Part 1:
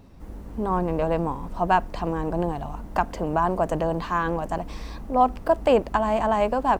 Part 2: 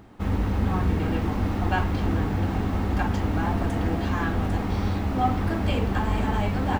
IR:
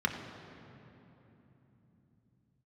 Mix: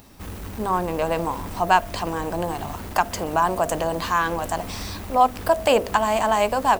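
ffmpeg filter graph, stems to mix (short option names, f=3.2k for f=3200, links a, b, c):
-filter_complex "[0:a]lowshelf=f=350:g=-7.5,bandreject=f=49.54:t=h:w=4,bandreject=f=99.08:t=h:w=4,bandreject=f=148.62:t=h:w=4,bandreject=f=198.16:t=h:w=4,bandreject=f=247.7:t=h:w=4,bandreject=f=297.24:t=h:w=4,bandreject=f=346.78:t=h:w=4,bandreject=f=396.32:t=h:w=4,bandreject=f=445.86:t=h:w=4,bandreject=f=495.4:t=h:w=4,bandreject=f=544.94:t=h:w=4,bandreject=f=594.48:t=h:w=4,bandreject=f=644.02:t=h:w=4,bandreject=f=693.56:t=h:w=4,volume=3dB,asplit=2[a][b];[1:a]asoftclip=type=hard:threshold=-28dB,volume=-5.5dB[c];[b]apad=whole_len=299560[d];[c][d]sidechaincompress=threshold=-23dB:ratio=8:attack=6.8:release=170[e];[a][e]amix=inputs=2:normalize=0,crystalizer=i=3.5:c=0"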